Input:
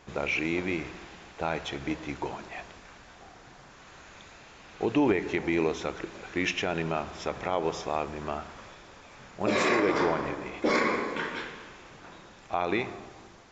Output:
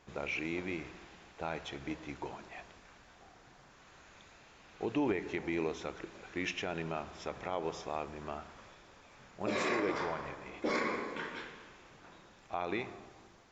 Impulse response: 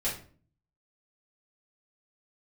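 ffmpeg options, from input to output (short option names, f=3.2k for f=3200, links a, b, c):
-filter_complex "[0:a]asettb=1/sr,asplit=3[a][b][c];[a]atrim=end=9.954[d];[b]atrim=start=9.95:end=10.48,asetpts=PTS-STARTPTS,afade=t=in:d=0.004:c=qsin,afade=t=out:st=0.526:d=0.004:c=qsin,equalizer=f=300:w=1.3:g=-8[e];[c]atrim=start=10.476[f];[d][e]acrossfade=d=0.004:c1=hsin:c2=qsin[g];[g][f]acrossfade=d=0.004:c1=qsin:c2=hsin,volume=-8dB"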